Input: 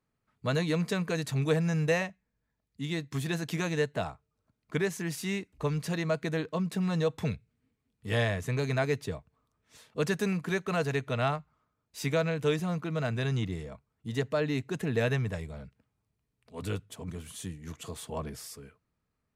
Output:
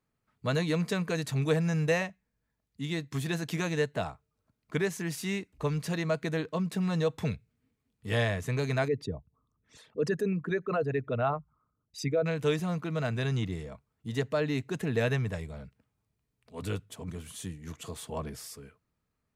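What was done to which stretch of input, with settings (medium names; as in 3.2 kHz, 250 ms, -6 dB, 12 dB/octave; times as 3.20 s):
8.88–12.26 s: resonances exaggerated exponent 2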